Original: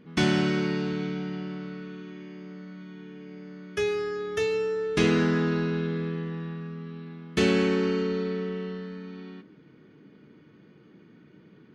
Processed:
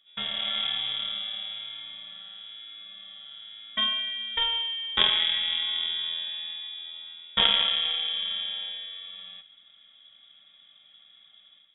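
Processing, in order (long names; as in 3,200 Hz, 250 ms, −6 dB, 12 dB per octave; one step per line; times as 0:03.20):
automatic gain control gain up to 10 dB
harmonic generator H 3 −12 dB, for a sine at −1.5 dBFS
voice inversion scrambler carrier 3,600 Hz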